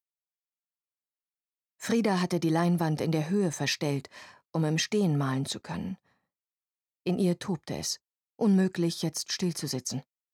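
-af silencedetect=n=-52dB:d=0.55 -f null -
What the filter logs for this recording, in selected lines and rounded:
silence_start: 0.00
silence_end: 1.80 | silence_duration: 1.80
silence_start: 5.98
silence_end: 7.06 | silence_duration: 1.08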